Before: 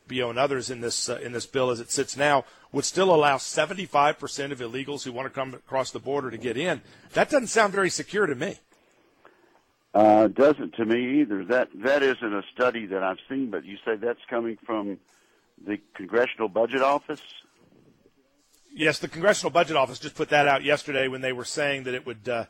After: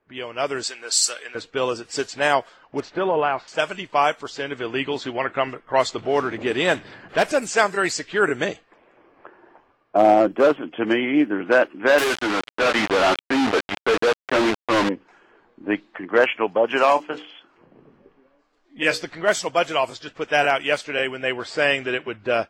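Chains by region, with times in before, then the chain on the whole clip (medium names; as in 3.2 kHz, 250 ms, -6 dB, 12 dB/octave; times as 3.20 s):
0.63–1.35 s: high-pass 870 Hz 6 dB/octave + tilt EQ +2.5 dB/octave
2.80–3.48 s: low-pass 2 kHz + compression 5:1, threshold -22 dBFS
5.98–7.48 s: companding laws mixed up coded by mu + hard clipper -14.5 dBFS
11.98–14.89 s: flange 1.5 Hz, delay 6.1 ms, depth 3.4 ms, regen +77% + treble shelf 6.1 kHz +3 dB + companded quantiser 2-bit
16.87–19.02 s: hum notches 60/120/180/240/300/360/420/480 Hz + doubling 23 ms -10 dB
whole clip: level-controlled noise filter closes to 1.5 kHz, open at -18 dBFS; bass shelf 320 Hz -8.5 dB; level rider gain up to 16 dB; trim -4 dB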